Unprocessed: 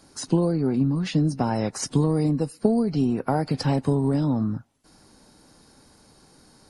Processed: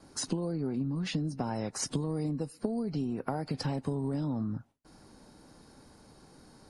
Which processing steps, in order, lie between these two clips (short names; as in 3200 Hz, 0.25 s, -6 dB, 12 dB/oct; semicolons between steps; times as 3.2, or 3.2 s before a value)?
gate with hold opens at -51 dBFS; compressor 6:1, threshold -30 dBFS, peak gain reduction 14.5 dB; mismatched tape noise reduction decoder only